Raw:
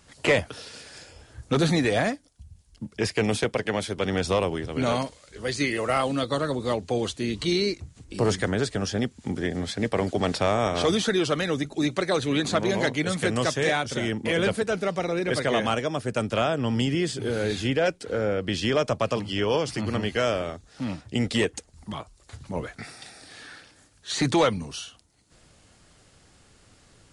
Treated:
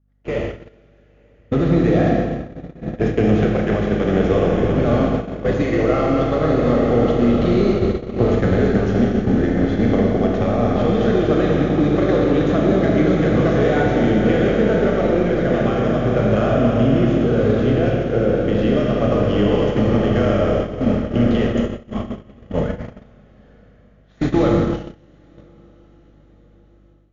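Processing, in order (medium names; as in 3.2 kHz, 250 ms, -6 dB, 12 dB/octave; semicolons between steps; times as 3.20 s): median filter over 9 samples; in parallel at -7.5 dB: overload inside the chain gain 29 dB; on the sum: compression 8:1, threshold -24 dBFS, peak gain reduction 8.5 dB; Chebyshev low-pass 7 kHz, order 10; band-stop 950 Hz, Q 5.2; echo that smears into a reverb 1015 ms, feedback 49%, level -8 dB; Schroeder reverb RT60 3.2 s, combs from 26 ms, DRR -2.5 dB; hum 50 Hz, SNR 13 dB; gate -26 dBFS, range -28 dB; tilt shelf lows +7 dB, about 1.4 kHz; level rider gain up to 11.5 dB; trim -3.5 dB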